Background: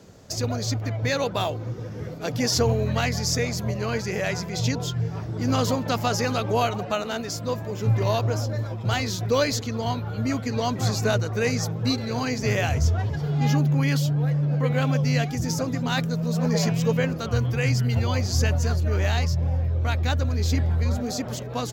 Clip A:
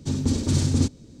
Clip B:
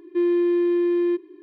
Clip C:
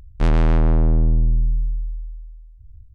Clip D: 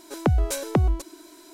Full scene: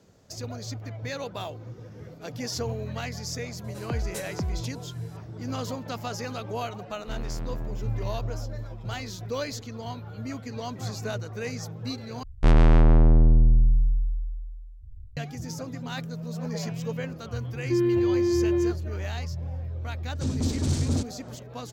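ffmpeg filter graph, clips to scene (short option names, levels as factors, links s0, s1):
-filter_complex "[3:a]asplit=2[s0][s1];[0:a]volume=0.335[s2];[4:a]alimiter=limit=0.178:level=0:latency=1:release=71[s3];[s1]aresample=32000,aresample=44100[s4];[1:a]asoftclip=type=tanh:threshold=0.141[s5];[s2]asplit=2[s6][s7];[s6]atrim=end=12.234[s8];[s4]atrim=end=2.94,asetpts=PTS-STARTPTS,volume=0.944[s9];[s7]atrim=start=15.166[s10];[s3]atrim=end=1.53,asetpts=PTS-STARTPTS,volume=0.398,afade=t=in:d=0.004:c=hsin,afade=t=out:st=1.526:d=0.004:c=hsin,adelay=3640[s11];[s0]atrim=end=2.94,asetpts=PTS-STARTPTS,volume=0.133,afade=t=in:d=0.004:c=hsin,afade=t=out:st=2.936:d=0.004:c=hsin,adelay=6880[s12];[2:a]atrim=end=1.42,asetpts=PTS-STARTPTS,volume=0.708,afade=t=in:d=0.004:c=hsin,afade=t=out:st=1.416:d=0.004:c=hsin,adelay=17550[s13];[s5]atrim=end=1.2,asetpts=PTS-STARTPTS,volume=0.75,afade=t=in:d=0.004:c=hsin,afade=t=out:st=1.196:d=0.004:c=hsin,adelay=20150[s14];[s8][s9]acrossfade=d=0.004:c1=hsin:c2=hsin[s15];[s15][s10]acrossfade=d=0.004:c1=hsin:c2=hsin[s16];[s16][s11][s12][s13][s14]amix=inputs=5:normalize=0"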